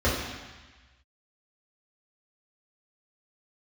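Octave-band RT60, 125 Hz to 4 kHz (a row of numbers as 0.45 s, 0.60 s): 1.4 s, 1.2 s, 1.1 s, 1.4 s, 1.5 s, 1.4 s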